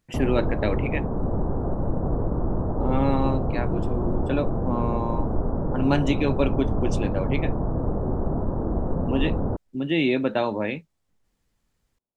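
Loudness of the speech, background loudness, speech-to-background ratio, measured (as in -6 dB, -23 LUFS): -27.5 LUFS, -27.5 LUFS, 0.0 dB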